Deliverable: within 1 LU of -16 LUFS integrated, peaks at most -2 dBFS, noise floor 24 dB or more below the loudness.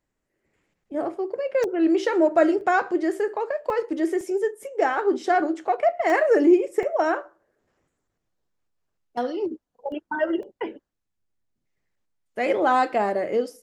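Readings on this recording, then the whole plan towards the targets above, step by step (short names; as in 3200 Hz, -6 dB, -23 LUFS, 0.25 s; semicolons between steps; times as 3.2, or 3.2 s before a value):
dropouts 8; longest dropout 1.2 ms; loudness -23.5 LUFS; peak -7.0 dBFS; loudness target -16.0 LUFS
-> interpolate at 1.64/2.61/3.7/4.21/6.1/6.83/9.92/10.43, 1.2 ms; gain +7.5 dB; limiter -2 dBFS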